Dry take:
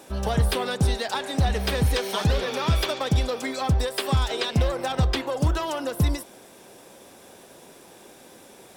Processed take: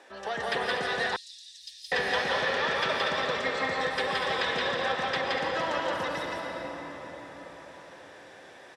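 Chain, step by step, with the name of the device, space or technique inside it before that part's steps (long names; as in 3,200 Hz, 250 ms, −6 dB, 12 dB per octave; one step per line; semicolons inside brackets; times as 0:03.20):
station announcement (band-pass filter 450–4,700 Hz; parametric band 1,800 Hz +12 dB 0.27 octaves; loudspeakers that aren't time-aligned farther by 59 metres −2 dB, 83 metres −9 dB; convolution reverb RT60 5.2 s, pre-delay 103 ms, DRR 0.5 dB)
0:01.16–0:01.92: inverse Chebyshev band-stop filter 130–1,200 Hz, stop band 70 dB
level −5 dB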